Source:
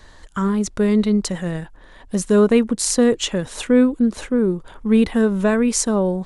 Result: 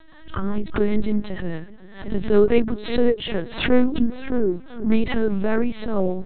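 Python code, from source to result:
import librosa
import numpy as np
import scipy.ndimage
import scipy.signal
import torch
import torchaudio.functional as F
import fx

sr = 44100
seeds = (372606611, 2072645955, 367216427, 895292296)

y = fx.rotary(x, sr, hz=5.0)
y = fx.echo_feedback(y, sr, ms=375, feedback_pct=48, wet_db=-21.5)
y = fx.lpc_vocoder(y, sr, seeds[0], excitation='pitch_kept', order=8)
y = fx.pre_swell(y, sr, db_per_s=110.0)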